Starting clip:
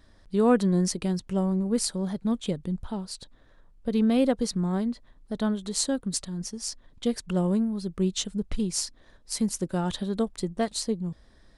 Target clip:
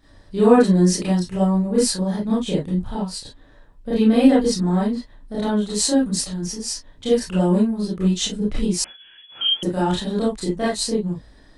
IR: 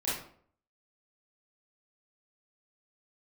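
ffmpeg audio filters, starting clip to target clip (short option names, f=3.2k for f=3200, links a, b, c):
-filter_complex "[1:a]atrim=start_sample=2205,afade=t=out:st=0.14:d=0.01,atrim=end_sample=6615[a];[0:a][a]afir=irnorm=-1:irlink=0,asettb=1/sr,asplit=3[b][c][d];[b]atrim=end=8.844[e];[c]atrim=start=8.84:end=9.63,asetpts=PTS-STARTPTS,afade=t=in:d=0.004:c=qsin,afade=t=out:st=0.786:d=0.004:c=qsin,lowpass=f=2.9k:t=q:w=0.5098,lowpass=f=2.9k:t=q:w=0.6013,lowpass=f=2.9k:t=q:w=0.9,lowpass=f=2.9k:t=q:w=2.563,afreqshift=-3400[f];[d]atrim=start=9.626[g];[e][f]acrossfade=d=0.004:c1=hsin:c2=qsin[h];[h][g]acrossfade=d=0.004:c1=qsin:c2=hsin,volume=2dB"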